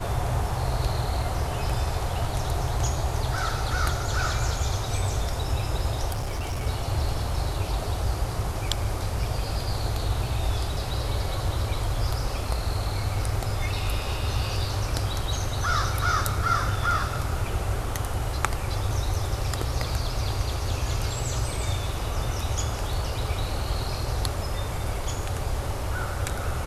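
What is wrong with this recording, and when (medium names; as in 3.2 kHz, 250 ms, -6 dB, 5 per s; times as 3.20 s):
6.11–6.67 s: clipped -25 dBFS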